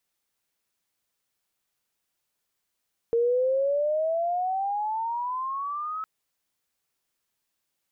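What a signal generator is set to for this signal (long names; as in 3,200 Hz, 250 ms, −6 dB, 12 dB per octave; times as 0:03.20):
glide logarithmic 460 Hz → 1,300 Hz −19.5 dBFS → −29.5 dBFS 2.91 s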